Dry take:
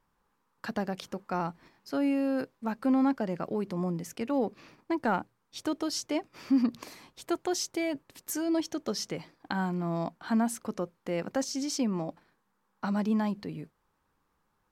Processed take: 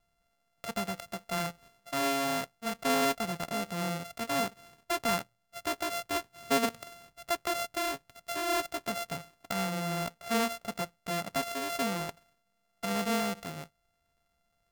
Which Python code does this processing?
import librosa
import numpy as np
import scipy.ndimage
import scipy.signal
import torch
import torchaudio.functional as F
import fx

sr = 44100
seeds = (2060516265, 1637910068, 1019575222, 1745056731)

y = np.r_[np.sort(x[:len(x) // 64 * 64].reshape(-1, 64), axis=1).ravel(), x[len(x) // 64 * 64:]]
y = fx.peak_eq(y, sr, hz=310.0, db=-6.5, octaves=1.3)